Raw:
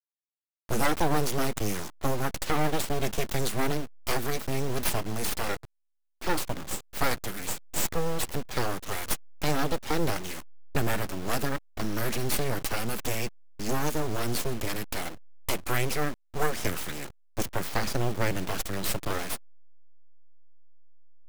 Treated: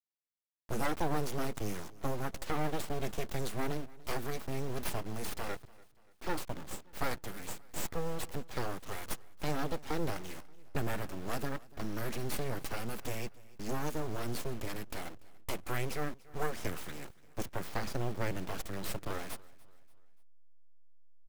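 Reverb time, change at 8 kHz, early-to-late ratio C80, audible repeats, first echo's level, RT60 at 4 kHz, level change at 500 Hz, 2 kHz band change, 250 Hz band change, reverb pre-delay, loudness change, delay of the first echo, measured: none, -11.0 dB, none, 2, -22.5 dB, none, -7.0 dB, -9.0 dB, -7.0 dB, none, -8.0 dB, 0.29 s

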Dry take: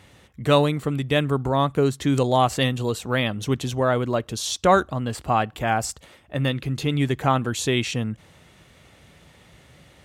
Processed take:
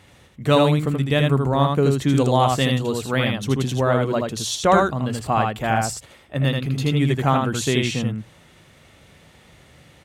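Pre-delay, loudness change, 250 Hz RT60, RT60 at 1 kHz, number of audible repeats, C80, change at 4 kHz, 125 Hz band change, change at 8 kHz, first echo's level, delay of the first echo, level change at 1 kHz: none, +2.5 dB, none, none, 1, none, +1.5 dB, +4.0 dB, +1.5 dB, -3.5 dB, 80 ms, +1.5 dB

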